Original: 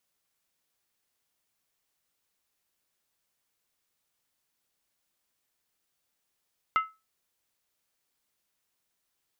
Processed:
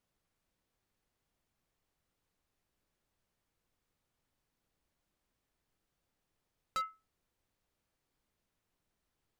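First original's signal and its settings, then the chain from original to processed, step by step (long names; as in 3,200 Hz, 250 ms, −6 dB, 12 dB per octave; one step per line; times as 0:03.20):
struck skin, lowest mode 1,300 Hz, decay 0.25 s, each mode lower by 9 dB, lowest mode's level −18 dB
spectral tilt −3 dB per octave
gain into a clipping stage and back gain 32 dB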